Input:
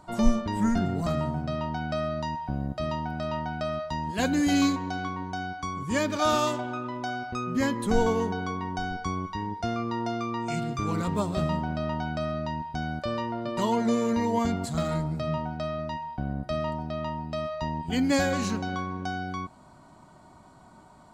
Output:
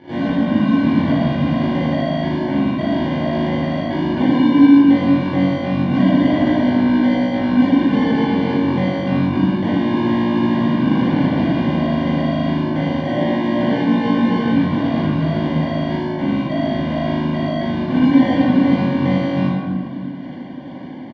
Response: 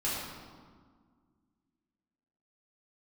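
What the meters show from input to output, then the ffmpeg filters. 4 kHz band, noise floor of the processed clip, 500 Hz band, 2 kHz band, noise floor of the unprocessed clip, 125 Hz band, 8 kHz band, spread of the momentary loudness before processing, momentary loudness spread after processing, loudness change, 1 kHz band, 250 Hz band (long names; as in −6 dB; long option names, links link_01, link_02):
+7.0 dB, −29 dBFS, +8.0 dB, +7.5 dB, −53 dBFS, +11.0 dB, below −10 dB, 8 LU, 6 LU, +12.0 dB, +5.0 dB, +15.0 dB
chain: -filter_complex "[0:a]equalizer=frequency=430:width_type=o:width=2.9:gain=7,aecho=1:1:3.8:0.39,acompressor=threshold=-24dB:ratio=3,asoftclip=type=tanh:threshold=-28.5dB,tremolo=f=52:d=0.889,acrusher=samples=34:mix=1:aa=0.000001,highpass=110,equalizer=frequency=140:width_type=q:width=4:gain=7,equalizer=frequency=270:width_type=q:width=4:gain=8,equalizer=frequency=400:width_type=q:width=4:gain=-4,lowpass=frequency=3600:width=0.5412,lowpass=frequency=3600:width=1.3066[link_01];[1:a]atrim=start_sample=2205[link_02];[link_01][link_02]afir=irnorm=-1:irlink=0,volume=8dB"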